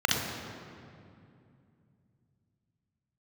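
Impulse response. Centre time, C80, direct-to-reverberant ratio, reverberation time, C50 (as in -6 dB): 92 ms, 3.5 dB, -1.0 dB, 2.5 s, 0.0 dB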